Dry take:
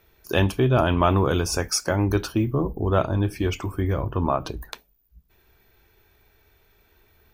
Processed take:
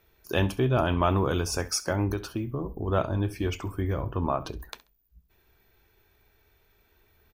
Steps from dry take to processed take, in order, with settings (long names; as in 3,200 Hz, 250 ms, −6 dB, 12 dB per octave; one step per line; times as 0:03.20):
0:02.13–0:02.88: downward compressor 2.5 to 1, threshold −25 dBFS, peak gain reduction 6 dB
repeating echo 67 ms, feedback 22%, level −19 dB
level −4.5 dB